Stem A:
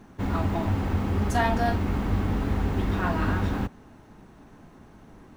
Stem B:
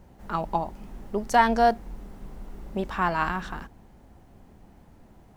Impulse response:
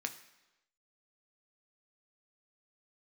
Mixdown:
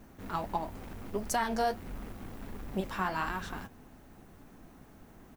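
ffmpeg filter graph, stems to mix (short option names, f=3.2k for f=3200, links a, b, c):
-filter_complex "[0:a]bandreject=f=930:w=12,acompressor=threshold=-28dB:ratio=6,asoftclip=type=hard:threshold=-37.5dB,volume=-8.5dB,asplit=2[a][b];[b]volume=-6.5dB[c];[1:a]aemphasis=mode=production:type=50kf,flanger=delay=3:depth=8:regen=44:speed=1.5:shape=sinusoidal,adelay=1.7,volume=-2dB[d];[2:a]atrim=start_sample=2205[e];[c][e]afir=irnorm=-1:irlink=0[f];[a][d][f]amix=inputs=3:normalize=0,alimiter=limit=-20dB:level=0:latency=1:release=185"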